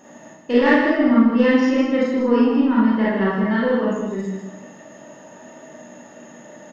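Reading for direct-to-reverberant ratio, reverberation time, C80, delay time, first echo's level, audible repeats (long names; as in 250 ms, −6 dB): −7.5 dB, 0.85 s, 2.0 dB, 155 ms, −7.0 dB, 1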